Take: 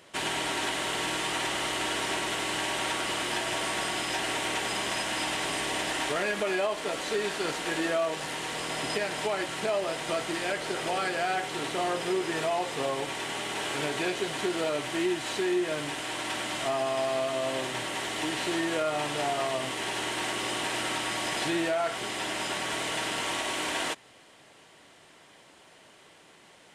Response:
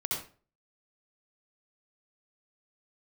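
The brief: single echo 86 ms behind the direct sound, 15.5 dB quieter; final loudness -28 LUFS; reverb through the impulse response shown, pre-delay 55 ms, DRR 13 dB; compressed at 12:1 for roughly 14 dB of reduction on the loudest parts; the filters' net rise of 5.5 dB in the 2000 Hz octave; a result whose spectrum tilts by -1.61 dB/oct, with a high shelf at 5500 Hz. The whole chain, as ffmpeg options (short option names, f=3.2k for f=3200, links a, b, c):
-filter_complex "[0:a]equalizer=f=2k:t=o:g=6,highshelf=f=5.5k:g=4.5,acompressor=threshold=-37dB:ratio=12,aecho=1:1:86:0.168,asplit=2[a][b];[1:a]atrim=start_sample=2205,adelay=55[c];[b][c]afir=irnorm=-1:irlink=0,volume=-18dB[d];[a][d]amix=inputs=2:normalize=0,volume=10.5dB"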